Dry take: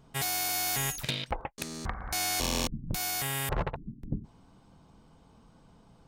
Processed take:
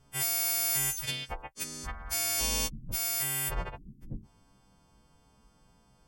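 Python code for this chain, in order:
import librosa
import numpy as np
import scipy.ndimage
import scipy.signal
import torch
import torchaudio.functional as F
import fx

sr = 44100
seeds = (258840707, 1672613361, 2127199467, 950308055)

y = fx.freq_snap(x, sr, grid_st=2)
y = fx.low_shelf(y, sr, hz=69.0, db=9.5)
y = fx.notch(y, sr, hz=4000.0, q=10.0)
y = F.gain(torch.from_numpy(y), -6.0).numpy()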